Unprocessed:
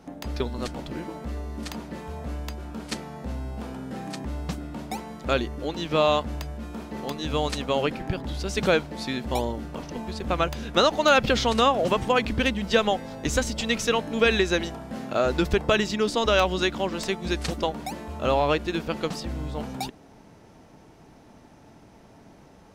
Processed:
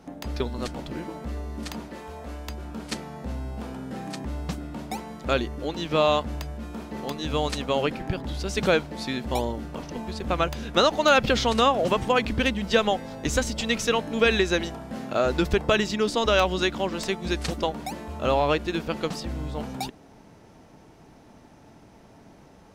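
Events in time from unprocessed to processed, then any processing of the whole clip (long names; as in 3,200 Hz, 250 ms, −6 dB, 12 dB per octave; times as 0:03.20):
0:01.88–0:02.49: parametric band 120 Hz −14.5 dB 1.2 octaves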